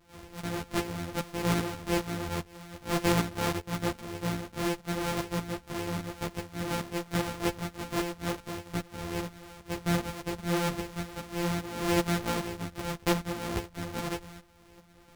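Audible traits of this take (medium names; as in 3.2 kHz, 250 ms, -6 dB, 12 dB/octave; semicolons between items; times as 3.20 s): a buzz of ramps at a fixed pitch in blocks of 256 samples; tremolo saw up 2.5 Hz, depth 60%; a shimmering, thickened sound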